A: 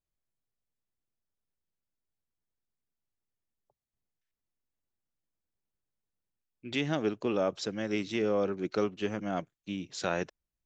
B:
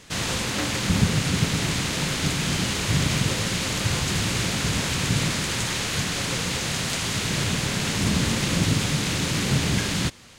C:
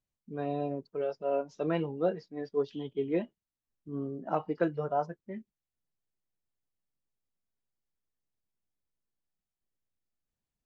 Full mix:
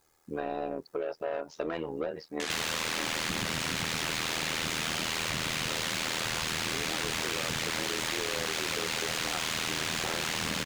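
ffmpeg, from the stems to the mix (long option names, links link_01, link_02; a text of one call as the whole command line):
ffmpeg -i stem1.wav -i stem2.wav -i stem3.wav -filter_complex "[0:a]equalizer=frequency=2900:width=1.1:gain=-12,aecho=1:1:2.4:0.9,acompressor=threshold=-34dB:ratio=6,volume=1.5dB[link_01];[1:a]adelay=2400,volume=-5dB[link_02];[2:a]alimiter=limit=-21dB:level=0:latency=1:release=246,volume=-16dB[link_03];[link_01][link_02][link_03]amix=inputs=3:normalize=0,asplit=2[link_04][link_05];[link_05]highpass=frequency=720:poles=1,volume=39dB,asoftclip=type=tanh:threshold=-11.5dB[link_06];[link_04][link_06]amix=inputs=2:normalize=0,lowpass=frequency=4100:poles=1,volume=-6dB,tremolo=f=80:d=0.824,acompressor=threshold=-30dB:ratio=6" out.wav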